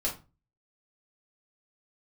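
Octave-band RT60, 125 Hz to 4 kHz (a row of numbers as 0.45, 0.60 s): 0.50, 0.40, 0.30, 0.30, 0.25, 0.25 s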